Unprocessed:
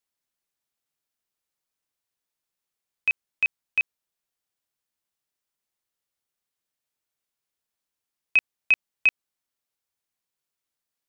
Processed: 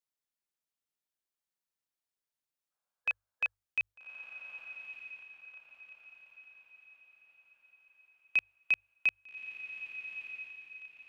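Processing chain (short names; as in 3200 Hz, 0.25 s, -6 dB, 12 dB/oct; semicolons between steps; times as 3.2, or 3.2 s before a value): spectral gain 2.71–3.55, 490–1700 Hz +10 dB; notches 50/100 Hz; on a send: diffused feedback echo 1.217 s, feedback 42%, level -9 dB; on the sum: gain -8.5 dB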